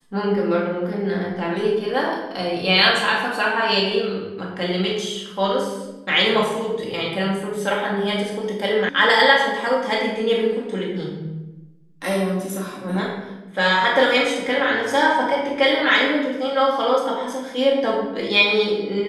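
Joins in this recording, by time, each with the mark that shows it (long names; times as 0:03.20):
0:08.89: cut off before it has died away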